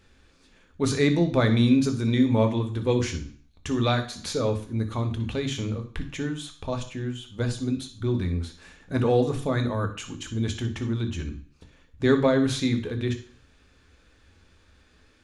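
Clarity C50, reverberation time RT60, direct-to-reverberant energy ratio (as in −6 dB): 11.0 dB, 0.45 s, 5.5 dB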